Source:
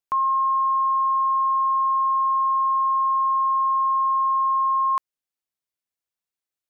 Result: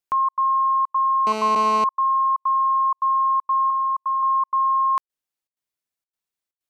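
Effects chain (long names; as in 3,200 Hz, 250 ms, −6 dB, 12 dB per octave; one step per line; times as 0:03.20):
gate pattern "xxx.xxxxx.x" 159 BPM −60 dB
0:01.27–0:01.84: phone interference −28 dBFS
0:03.70–0:04.23: high-pass filter 950 Hz 6 dB per octave
level +1.5 dB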